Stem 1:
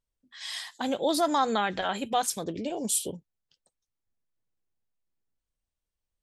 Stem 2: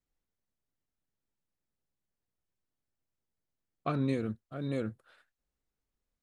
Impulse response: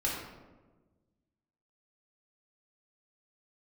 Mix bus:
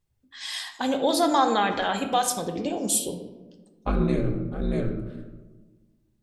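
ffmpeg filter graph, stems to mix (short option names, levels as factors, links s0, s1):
-filter_complex "[0:a]volume=1.06,asplit=2[s0][s1];[s1]volume=0.376[s2];[1:a]aeval=exprs='val(0)*sin(2*PI*99*n/s)':c=same,lowshelf=f=330:g=7.5,volume=1.19,asplit=2[s3][s4];[s4]volume=0.531[s5];[2:a]atrim=start_sample=2205[s6];[s2][s5]amix=inputs=2:normalize=0[s7];[s7][s6]afir=irnorm=-1:irlink=0[s8];[s0][s3][s8]amix=inputs=3:normalize=0"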